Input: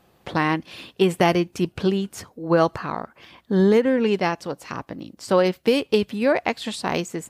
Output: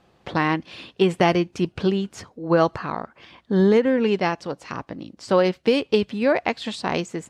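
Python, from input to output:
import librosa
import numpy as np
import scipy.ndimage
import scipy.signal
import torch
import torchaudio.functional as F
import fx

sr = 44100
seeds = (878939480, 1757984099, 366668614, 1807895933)

y = scipy.signal.sosfilt(scipy.signal.butter(2, 6400.0, 'lowpass', fs=sr, output='sos'), x)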